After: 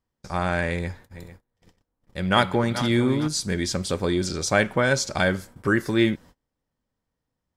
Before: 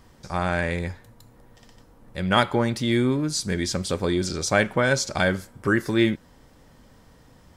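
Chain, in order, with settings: 0.79–3.28 s: backward echo that repeats 225 ms, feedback 59%, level -11 dB; gate -44 dBFS, range -29 dB

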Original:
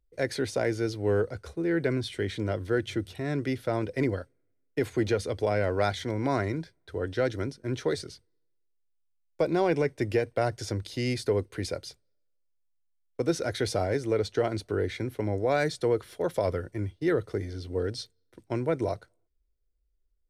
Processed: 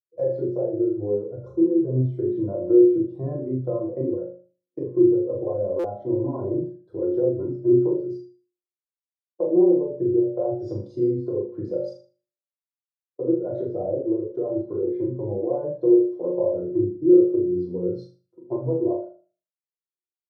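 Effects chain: low-pass that closes with the level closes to 1.1 kHz, closed at -23 dBFS; high-pass 95 Hz 24 dB/octave; peaking EQ 2.9 kHz -4.5 dB 1.8 oct; band-stop 1.5 kHz, Q 28; de-hum 291.1 Hz, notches 2; compression 10:1, threshold -33 dBFS, peak gain reduction 13 dB; graphic EQ 125/250/500/1000/2000/8000 Hz +7/+5/+8/+10/-10/+4 dB; flutter echo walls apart 6.7 m, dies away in 0.52 s; reverberation RT60 0.45 s, pre-delay 3 ms, DRR -1 dB; buffer glitch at 5.79 s, samples 256, times 8; spectral contrast expander 1.5:1; trim +1.5 dB

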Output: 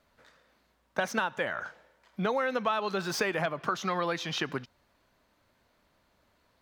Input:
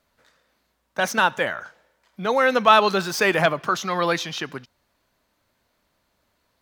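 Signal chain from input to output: compression 10:1, threshold -27 dBFS, peak gain reduction 17.5 dB; treble shelf 5 kHz -7.5 dB; trim +1.5 dB

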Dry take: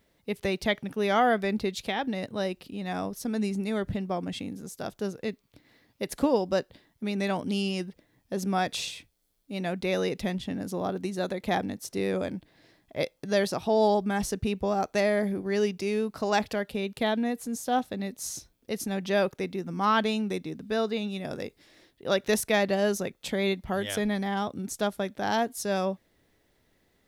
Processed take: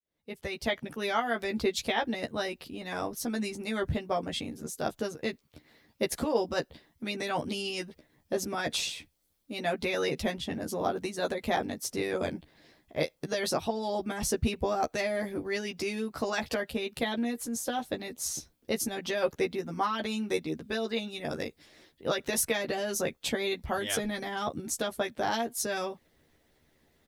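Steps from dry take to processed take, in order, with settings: fade-in on the opening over 1.10 s; peak limiter -19 dBFS, peak gain reduction 8 dB; doubling 13 ms -3 dB; harmonic-percussive split percussive +9 dB; trim -6.5 dB

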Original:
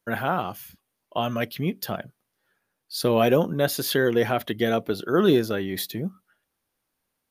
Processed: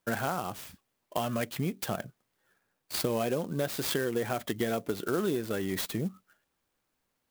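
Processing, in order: compression 6:1, threshold -27 dBFS, peak gain reduction 12.5 dB; sampling jitter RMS 0.039 ms

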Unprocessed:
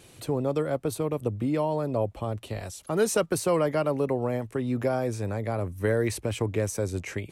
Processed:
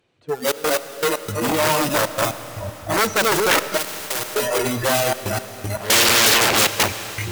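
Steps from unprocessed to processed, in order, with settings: backward echo that repeats 210 ms, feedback 47%, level -1 dB; tape spacing loss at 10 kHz 38 dB; in parallel at -7 dB: integer overflow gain 26.5 dB; 5.80–6.83 s: on the sum: waveshaping leveller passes 3; spectral noise reduction 25 dB; trance gate "xxxx.x..x.xx" 117 bpm -24 dB; sine folder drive 12 dB, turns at -12.5 dBFS; tilt EQ +3 dB/octave; on a send at -12 dB: reverberation RT60 4.5 s, pre-delay 20 ms; 3.77–4.35 s: on the sum: spectrum-flattening compressor 2:1; trim -1 dB

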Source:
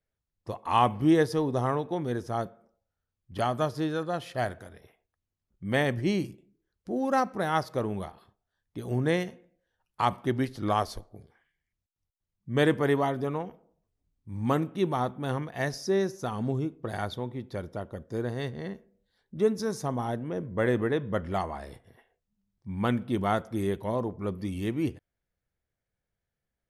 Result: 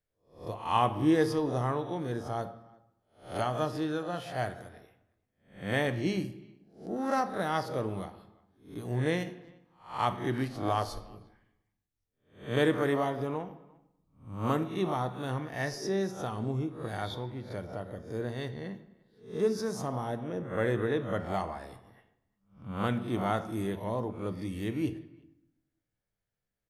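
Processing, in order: reverse spectral sustain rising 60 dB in 0.41 s; speakerphone echo 350 ms, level -26 dB; reverberation RT60 0.90 s, pre-delay 6 ms, DRR 9.5 dB; trim -4.5 dB

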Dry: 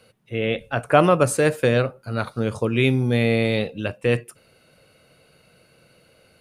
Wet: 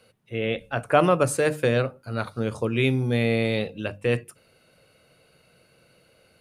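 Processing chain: hum notches 50/100/150/200/250/300 Hz; trim -3 dB

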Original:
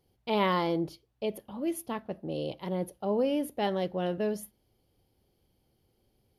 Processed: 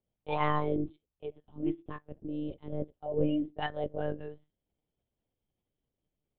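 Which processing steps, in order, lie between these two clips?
spectral noise reduction 15 dB; monotone LPC vocoder at 8 kHz 150 Hz

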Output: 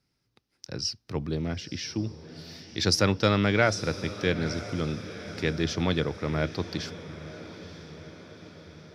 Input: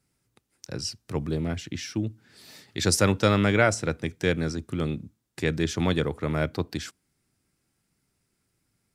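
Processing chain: resonant high shelf 6.4 kHz -7 dB, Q 3; on a send: echo that smears into a reverb 948 ms, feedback 59%, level -14 dB; on the sum: trim -2 dB

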